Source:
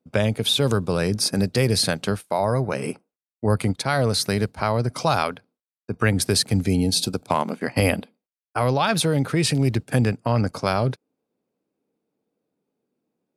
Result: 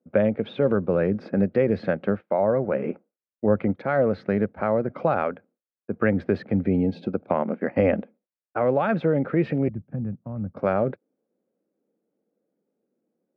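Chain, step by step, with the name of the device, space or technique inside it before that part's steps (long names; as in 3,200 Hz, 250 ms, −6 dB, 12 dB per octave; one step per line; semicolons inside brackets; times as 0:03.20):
0:09.68–0:10.57: drawn EQ curve 150 Hz 0 dB, 430 Hz −20 dB, 1,100 Hz −16 dB, 1,800 Hz −25 dB
bass cabinet (loudspeaker in its box 88–2,000 Hz, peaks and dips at 120 Hz −9 dB, 210 Hz +5 dB, 340 Hz +4 dB, 540 Hz +8 dB, 1,000 Hz −6 dB)
level −2.5 dB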